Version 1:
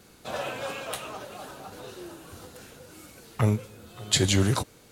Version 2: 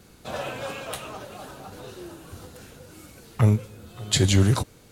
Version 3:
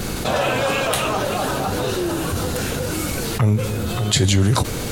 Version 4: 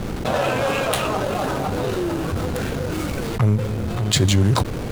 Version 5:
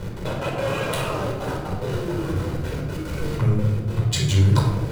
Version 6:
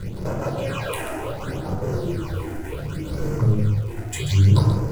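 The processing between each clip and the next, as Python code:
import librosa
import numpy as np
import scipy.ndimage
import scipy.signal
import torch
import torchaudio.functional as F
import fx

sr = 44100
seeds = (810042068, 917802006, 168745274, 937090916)

y1 = fx.low_shelf(x, sr, hz=180.0, db=7.5)
y2 = fx.dmg_noise_colour(y1, sr, seeds[0], colour='brown', level_db=-61.0)
y2 = fx.env_flatten(y2, sr, amount_pct=70)
y3 = fx.backlash(y2, sr, play_db=-20.5)
y4 = fx.step_gate(y3, sr, bpm=182, pattern='x.xx.x.xxxxxxxx', floor_db=-12.0, edge_ms=4.5)
y4 = fx.room_shoebox(y4, sr, seeds[1], volume_m3=2900.0, walls='furnished', distance_m=4.8)
y4 = y4 * 10.0 ** (-8.5 / 20.0)
y5 = fx.phaser_stages(y4, sr, stages=8, low_hz=140.0, high_hz=3700.0, hz=0.68, feedback_pct=25)
y5 = fx.dmg_crackle(y5, sr, seeds[2], per_s=280.0, level_db=-39.0)
y5 = y5 + 10.0 ** (-9.0 / 20.0) * np.pad(y5, (int(134 * sr / 1000.0), 0))[:len(y5)]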